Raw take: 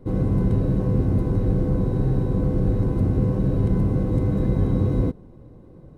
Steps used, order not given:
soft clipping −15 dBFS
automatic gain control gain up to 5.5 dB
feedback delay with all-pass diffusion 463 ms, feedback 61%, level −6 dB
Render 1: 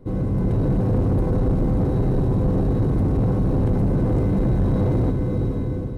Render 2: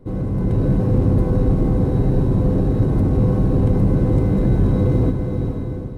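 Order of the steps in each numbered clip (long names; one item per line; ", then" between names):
feedback delay with all-pass diffusion, then automatic gain control, then soft clipping
soft clipping, then feedback delay with all-pass diffusion, then automatic gain control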